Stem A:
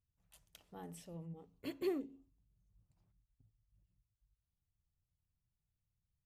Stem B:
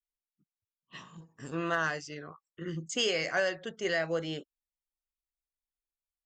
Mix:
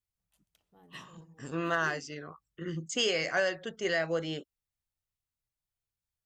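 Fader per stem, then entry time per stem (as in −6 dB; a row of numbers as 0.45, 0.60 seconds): −10.5, +0.5 decibels; 0.00, 0.00 seconds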